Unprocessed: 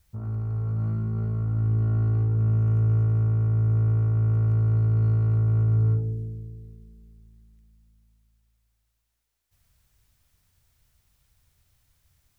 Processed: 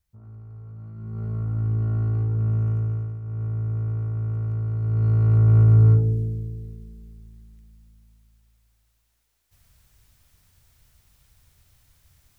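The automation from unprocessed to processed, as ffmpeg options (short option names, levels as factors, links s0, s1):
-af "volume=9.44,afade=t=in:st=0.94:d=0.41:silence=0.237137,afade=t=out:st=2.63:d=0.58:silence=0.237137,afade=t=in:st=3.21:d=0.23:silence=0.375837,afade=t=in:st=4.79:d=0.78:silence=0.266073"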